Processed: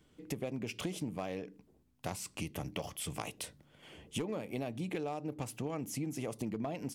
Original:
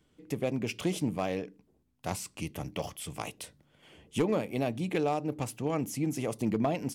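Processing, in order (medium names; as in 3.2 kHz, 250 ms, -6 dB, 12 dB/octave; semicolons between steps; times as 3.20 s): compression, threshold -37 dBFS, peak gain reduction 13 dB; trim +2 dB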